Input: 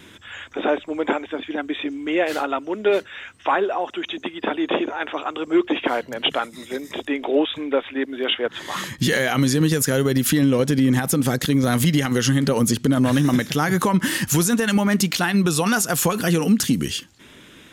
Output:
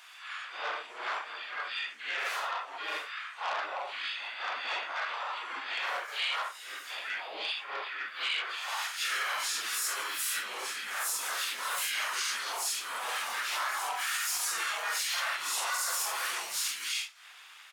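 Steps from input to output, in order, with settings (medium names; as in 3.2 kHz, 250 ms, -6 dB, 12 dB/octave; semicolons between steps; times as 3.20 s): phase randomisation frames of 200 ms; high-pass 990 Hz 24 dB/octave; peak limiter -19 dBFS, peak gain reduction 7.5 dB; harmony voices -5 st -4 dB, -4 st -4 dB, +5 st -7 dB; transformer saturation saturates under 2.5 kHz; trim -6 dB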